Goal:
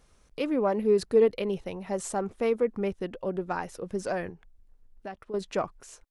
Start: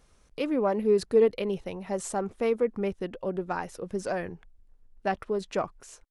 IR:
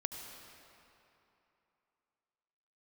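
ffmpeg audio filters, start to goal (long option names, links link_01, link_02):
-filter_complex "[0:a]asettb=1/sr,asplit=3[link_01][link_02][link_03];[link_01]atrim=end=4.304[link_04];[link_02]atrim=start=4.3:end=5.34,asetpts=PTS-STARTPTS,afade=type=in:duration=0.004:curve=qsin,afade=type=out:start_time=1.036:duration=0.004:curve=qsin,acompressor=threshold=-46dB:ratio=2[link_05];[link_03]atrim=start=5.336[link_06];[link_04][link_05]acrossfade=duration=0.004:curve1=hsin:curve2=qsin[link_07];[link_07][link_06]acrossfade=duration=0.004:curve1=qsin:curve2=hsin"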